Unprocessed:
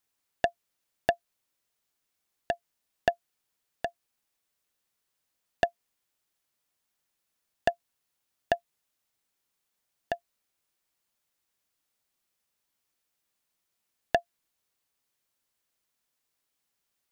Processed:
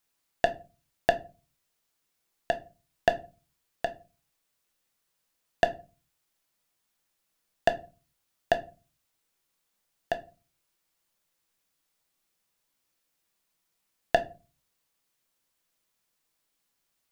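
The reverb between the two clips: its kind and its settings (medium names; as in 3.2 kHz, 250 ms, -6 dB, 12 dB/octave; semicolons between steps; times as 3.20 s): simulated room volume 140 m³, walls furnished, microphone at 0.69 m; trim +2 dB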